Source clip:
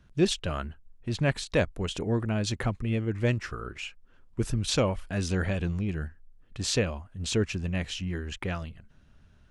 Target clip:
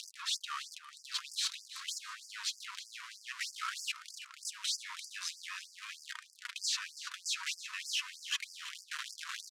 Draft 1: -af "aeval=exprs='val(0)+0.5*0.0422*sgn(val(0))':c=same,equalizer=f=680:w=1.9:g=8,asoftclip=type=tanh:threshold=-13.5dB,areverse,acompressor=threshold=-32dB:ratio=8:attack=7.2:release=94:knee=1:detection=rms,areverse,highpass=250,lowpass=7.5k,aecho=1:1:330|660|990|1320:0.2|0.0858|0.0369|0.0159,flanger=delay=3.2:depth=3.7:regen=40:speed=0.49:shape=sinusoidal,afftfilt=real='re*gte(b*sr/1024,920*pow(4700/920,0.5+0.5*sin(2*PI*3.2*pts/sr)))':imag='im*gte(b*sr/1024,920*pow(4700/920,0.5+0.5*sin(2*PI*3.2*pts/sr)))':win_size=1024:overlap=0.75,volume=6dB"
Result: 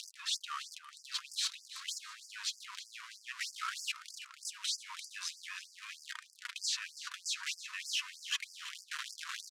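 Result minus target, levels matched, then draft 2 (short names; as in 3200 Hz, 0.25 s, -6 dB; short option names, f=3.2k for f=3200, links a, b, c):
soft clip: distortion -11 dB
-af "aeval=exprs='val(0)+0.5*0.0422*sgn(val(0))':c=same,equalizer=f=680:w=1.9:g=8,asoftclip=type=tanh:threshold=-23dB,areverse,acompressor=threshold=-32dB:ratio=8:attack=7.2:release=94:knee=1:detection=rms,areverse,highpass=250,lowpass=7.5k,aecho=1:1:330|660|990|1320:0.2|0.0858|0.0369|0.0159,flanger=delay=3.2:depth=3.7:regen=40:speed=0.49:shape=sinusoidal,afftfilt=real='re*gte(b*sr/1024,920*pow(4700/920,0.5+0.5*sin(2*PI*3.2*pts/sr)))':imag='im*gte(b*sr/1024,920*pow(4700/920,0.5+0.5*sin(2*PI*3.2*pts/sr)))':win_size=1024:overlap=0.75,volume=6dB"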